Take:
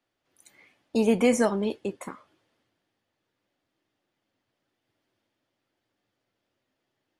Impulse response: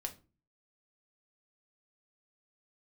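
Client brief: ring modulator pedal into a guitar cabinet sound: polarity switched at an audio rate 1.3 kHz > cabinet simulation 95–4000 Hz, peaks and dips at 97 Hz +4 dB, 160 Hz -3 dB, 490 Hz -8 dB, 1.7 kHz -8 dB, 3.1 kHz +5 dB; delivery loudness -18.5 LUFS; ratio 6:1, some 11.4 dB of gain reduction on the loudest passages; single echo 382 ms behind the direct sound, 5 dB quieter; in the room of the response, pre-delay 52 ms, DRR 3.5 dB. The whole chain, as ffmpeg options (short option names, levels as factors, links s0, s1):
-filter_complex "[0:a]acompressor=threshold=0.0355:ratio=6,aecho=1:1:382:0.562,asplit=2[s0][s1];[1:a]atrim=start_sample=2205,adelay=52[s2];[s1][s2]afir=irnorm=-1:irlink=0,volume=0.75[s3];[s0][s3]amix=inputs=2:normalize=0,aeval=exprs='val(0)*sgn(sin(2*PI*1300*n/s))':c=same,highpass=95,equalizer=f=97:t=q:w=4:g=4,equalizer=f=160:t=q:w=4:g=-3,equalizer=f=490:t=q:w=4:g=-8,equalizer=f=1700:t=q:w=4:g=-8,equalizer=f=3100:t=q:w=4:g=5,lowpass=f=4000:w=0.5412,lowpass=f=4000:w=1.3066,volume=5.96"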